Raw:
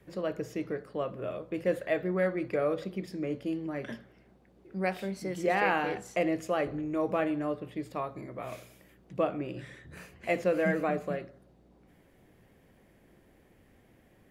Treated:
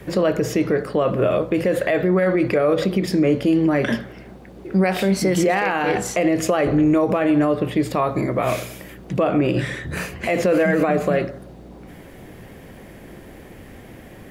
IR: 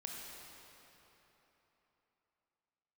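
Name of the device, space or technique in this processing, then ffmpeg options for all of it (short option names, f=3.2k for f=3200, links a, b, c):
loud club master: -af "acompressor=threshold=-31dB:ratio=2,asoftclip=type=hard:threshold=-19.5dB,alimiter=level_in=29.5dB:limit=-1dB:release=50:level=0:latency=1,volume=-9dB"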